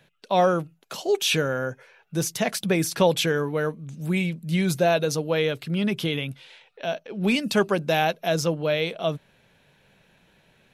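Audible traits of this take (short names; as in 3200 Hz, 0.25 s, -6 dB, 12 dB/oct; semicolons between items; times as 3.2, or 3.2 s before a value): noise floor -62 dBFS; spectral tilt -4.5 dB/oct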